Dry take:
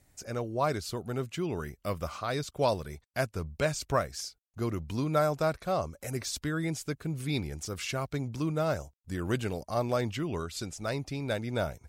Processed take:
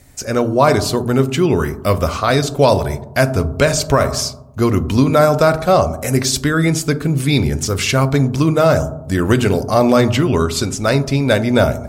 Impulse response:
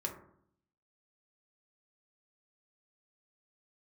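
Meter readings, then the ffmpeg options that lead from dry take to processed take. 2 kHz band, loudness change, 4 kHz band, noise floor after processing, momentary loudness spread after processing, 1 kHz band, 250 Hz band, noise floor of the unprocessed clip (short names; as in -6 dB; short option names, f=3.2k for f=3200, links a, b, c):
+16.5 dB, +17.0 dB, +17.0 dB, -33 dBFS, 6 LU, +16.0 dB, +18.5 dB, -73 dBFS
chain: -filter_complex "[0:a]bandreject=f=780:w=25,asplit=2[a][b];[1:a]atrim=start_sample=2205,asetrate=30870,aresample=44100[c];[b][c]afir=irnorm=-1:irlink=0,volume=-6.5dB[d];[a][d]amix=inputs=2:normalize=0,alimiter=level_in=15dB:limit=-1dB:release=50:level=0:latency=1,volume=-1dB"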